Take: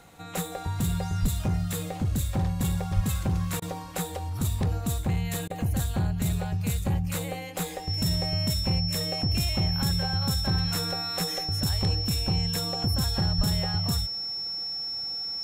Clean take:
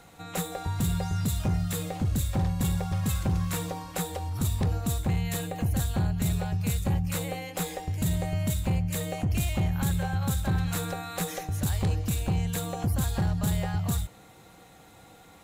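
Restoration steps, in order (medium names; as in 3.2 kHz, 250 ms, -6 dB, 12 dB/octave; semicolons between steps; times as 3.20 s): band-stop 5.4 kHz, Q 30; de-plosive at 1.21/2.95/13.37 s; interpolate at 3.60/5.48 s, 19 ms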